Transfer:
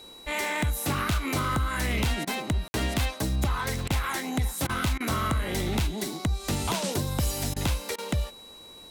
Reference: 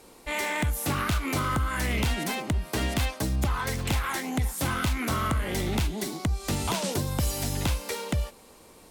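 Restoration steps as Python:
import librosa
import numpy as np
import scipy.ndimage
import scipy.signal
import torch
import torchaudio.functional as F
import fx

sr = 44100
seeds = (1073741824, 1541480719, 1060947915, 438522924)

y = fx.fix_declick_ar(x, sr, threshold=6.5)
y = fx.notch(y, sr, hz=3900.0, q=30.0)
y = fx.fix_ambience(y, sr, seeds[0], print_start_s=8.33, print_end_s=8.83, start_s=2.68, end_s=2.74)
y = fx.fix_interpolate(y, sr, at_s=(2.25, 3.88, 4.67, 4.98, 7.54, 7.96), length_ms=22.0)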